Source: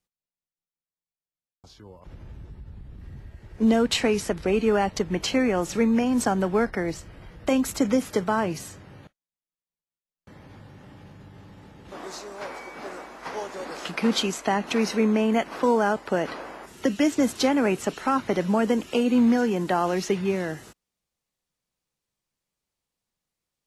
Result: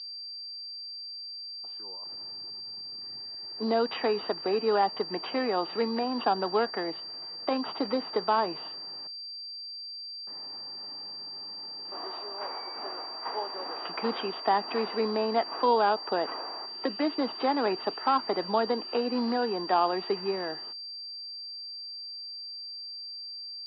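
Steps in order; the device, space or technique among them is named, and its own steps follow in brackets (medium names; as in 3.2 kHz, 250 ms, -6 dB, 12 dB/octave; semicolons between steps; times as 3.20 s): toy sound module (decimation joined by straight lines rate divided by 4×; class-D stage that switches slowly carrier 4.7 kHz; cabinet simulation 540–3700 Hz, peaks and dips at 560 Hz -7 dB, 1.5 kHz -7 dB, 2.2 kHz -9 dB); trim +3.5 dB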